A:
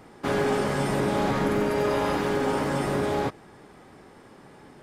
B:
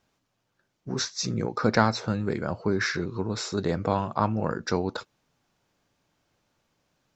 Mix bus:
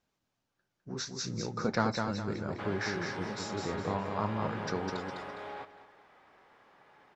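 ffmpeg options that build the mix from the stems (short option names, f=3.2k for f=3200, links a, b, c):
-filter_complex "[0:a]acompressor=threshold=-28dB:ratio=4,acrossover=split=570 4100:gain=0.141 1 0.0708[a][b][c];[a][b][c]amix=inputs=3:normalize=0,adelay=2350,volume=-6dB,asplit=2[d][e];[e]volume=-14dB[f];[1:a]flanger=delay=3.8:depth=8.3:regen=-65:speed=0.62:shape=triangular,volume=-4.5dB,asplit=2[g][h];[h]volume=-4.5dB[i];[f][i]amix=inputs=2:normalize=0,aecho=0:1:205|410|615|820|1025:1|0.35|0.122|0.0429|0.015[j];[d][g][j]amix=inputs=3:normalize=0"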